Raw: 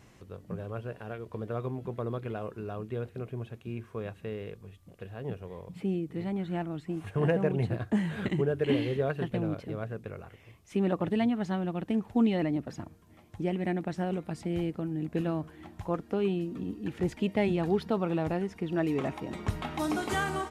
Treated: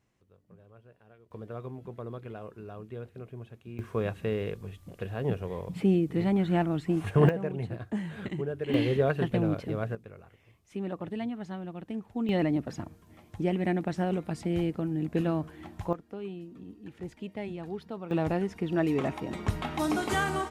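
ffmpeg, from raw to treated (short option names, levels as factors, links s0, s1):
-af "asetnsamples=n=441:p=0,asendcmd='1.31 volume volume -5.5dB;3.79 volume volume 7dB;7.29 volume volume -5dB;8.74 volume volume 4dB;9.95 volume volume -7dB;12.29 volume volume 2.5dB;15.93 volume volume -10dB;18.11 volume volume 2dB',volume=0.126"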